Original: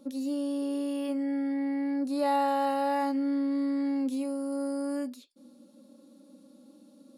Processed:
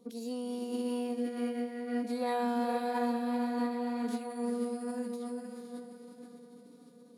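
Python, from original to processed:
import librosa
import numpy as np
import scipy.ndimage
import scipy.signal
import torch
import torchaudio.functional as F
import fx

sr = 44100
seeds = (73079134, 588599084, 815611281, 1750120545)

y = fx.echo_diffused(x, sr, ms=477, feedback_pct=48, wet_db=-4)
y = fx.pitch_keep_formants(y, sr, semitones=-2.5)
y = y * librosa.db_to_amplitude(-6.0)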